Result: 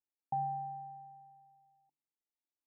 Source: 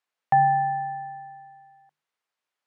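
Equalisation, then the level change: vocal tract filter u; -1.5 dB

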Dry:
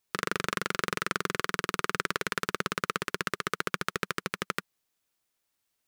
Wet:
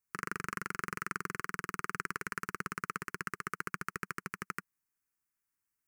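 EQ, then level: fixed phaser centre 1500 Hz, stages 4; -5.5 dB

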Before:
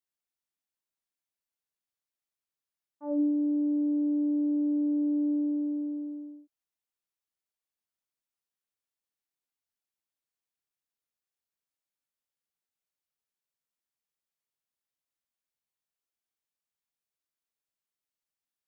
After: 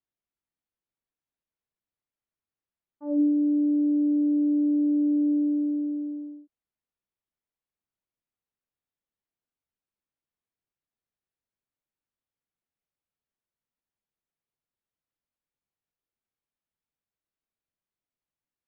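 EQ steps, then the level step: dynamic EQ 940 Hz, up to -5 dB, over -50 dBFS, Q 1.6; air absorption 280 m; low shelf 420 Hz +7.5 dB; 0.0 dB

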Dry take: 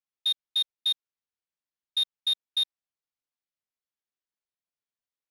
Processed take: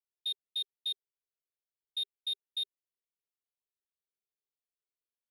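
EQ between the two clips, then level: bell 400 Hz +13.5 dB 0.35 oct; fixed phaser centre 600 Hz, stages 4; fixed phaser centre 2800 Hz, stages 4; -5.5 dB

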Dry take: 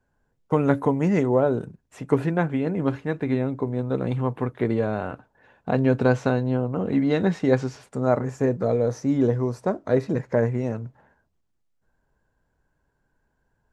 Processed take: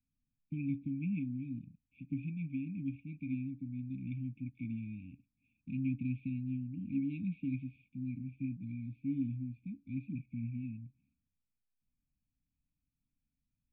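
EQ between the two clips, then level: vocal tract filter e; brick-wall FIR band-stop 300–2200 Hz; +6.0 dB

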